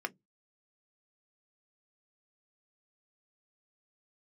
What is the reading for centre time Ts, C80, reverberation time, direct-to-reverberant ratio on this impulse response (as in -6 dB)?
3 ms, 42.0 dB, 0.15 s, 7.5 dB